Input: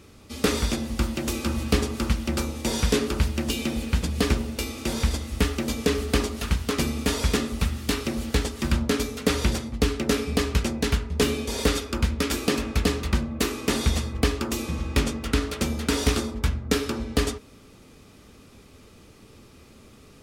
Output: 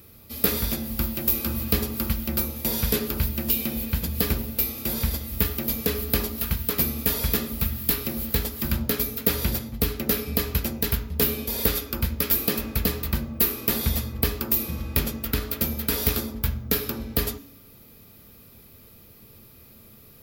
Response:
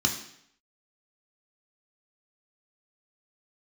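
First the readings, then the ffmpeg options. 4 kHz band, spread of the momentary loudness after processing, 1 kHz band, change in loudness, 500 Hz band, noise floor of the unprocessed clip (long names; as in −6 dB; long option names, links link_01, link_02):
−2.5 dB, 5 LU, −4.5 dB, +1.0 dB, −4.0 dB, −51 dBFS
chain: -filter_complex "[0:a]aexciter=amount=15.7:drive=7.7:freq=12000,asplit=2[link_01][link_02];[1:a]atrim=start_sample=2205[link_03];[link_02][link_03]afir=irnorm=-1:irlink=0,volume=-22.5dB[link_04];[link_01][link_04]amix=inputs=2:normalize=0,volume=-3dB"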